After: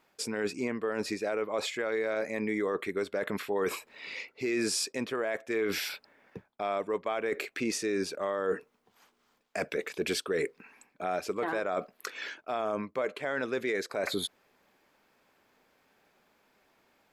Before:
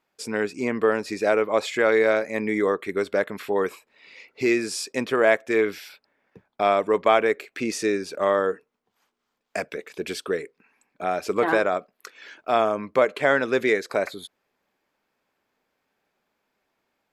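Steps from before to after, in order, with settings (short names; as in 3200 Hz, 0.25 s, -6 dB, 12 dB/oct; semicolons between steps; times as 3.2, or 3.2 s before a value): reverse; compressor 12:1, threshold -33 dBFS, peak gain reduction 20.5 dB; reverse; limiter -28.5 dBFS, peak gain reduction 7.5 dB; gain +7.5 dB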